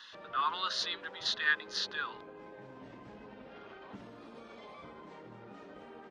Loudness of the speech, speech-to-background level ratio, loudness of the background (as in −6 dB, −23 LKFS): −33.5 LKFS, 17.0 dB, −50.5 LKFS